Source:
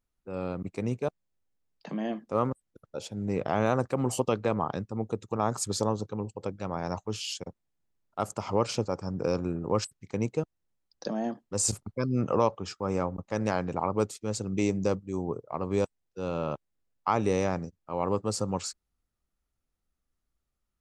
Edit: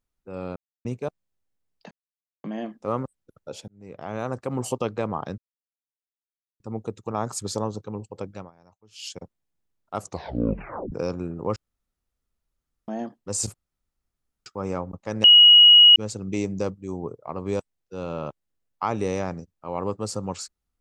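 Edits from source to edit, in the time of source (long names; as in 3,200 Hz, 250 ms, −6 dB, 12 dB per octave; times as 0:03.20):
0:00.56–0:00.85: silence
0:01.91: splice in silence 0.53 s
0:03.15–0:04.05: fade in
0:04.85: splice in silence 1.22 s
0:06.59–0:07.33: duck −24 dB, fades 0.17 s
0:08.25: tape stop 0.92 s
0:09.81–0:11.13: fill with room tone
0:11.79–0:12.71: fill with room tone
0:13.49–0:14.21: beep over 2,900 Hz −8 dBFS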